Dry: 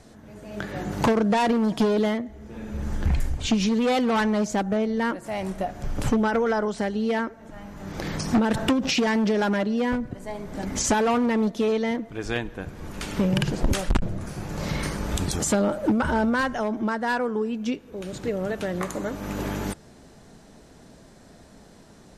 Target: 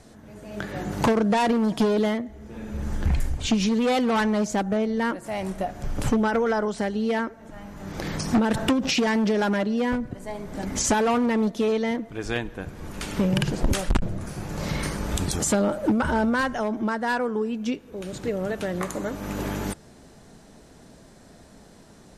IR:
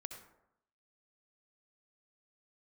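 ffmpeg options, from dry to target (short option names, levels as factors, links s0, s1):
-af "equalizer=f=10000:t=o:w=0.72:g=2.5"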